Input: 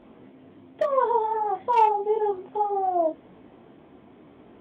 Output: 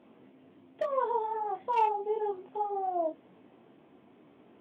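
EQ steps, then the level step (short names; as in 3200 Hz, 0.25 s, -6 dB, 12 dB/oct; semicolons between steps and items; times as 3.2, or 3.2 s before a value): HPF 120 Hz 12 dB/oct; bell 2700 Hz +4 dB 0.32 oct; -7.5 dB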